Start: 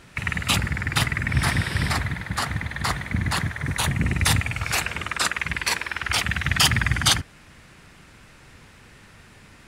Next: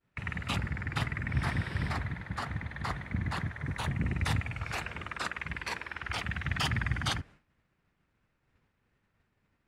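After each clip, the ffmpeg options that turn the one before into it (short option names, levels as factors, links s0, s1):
-af "agate=range=0.0224:threshold=0.0141:ratio=3:detection=peak,lowpass=f=1800:p=1,volume=0.398"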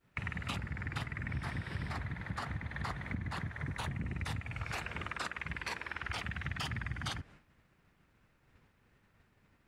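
-af "acompressor=threshold=0.00794:ratio=6,volume=2"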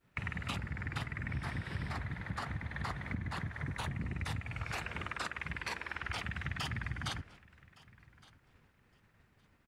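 -af "aecho=1:1:1164|2328:0.075|0.0135"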